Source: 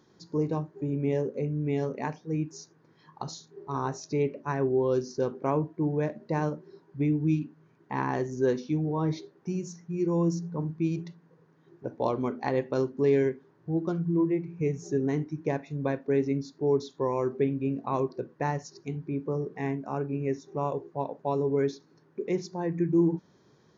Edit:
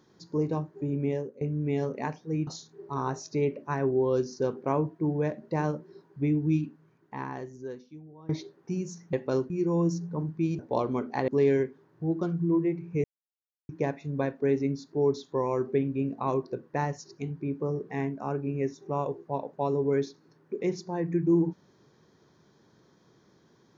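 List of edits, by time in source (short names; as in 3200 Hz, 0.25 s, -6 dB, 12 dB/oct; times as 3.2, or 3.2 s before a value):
1.03–1.41 fade out, to -20.5 dB
2.47–3.25 cut
7.45–9.07 fade out quadratic, to -21.5 dB
11–11.88 cut
12.57–12.94 move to 9.91
14.7–15.35 mute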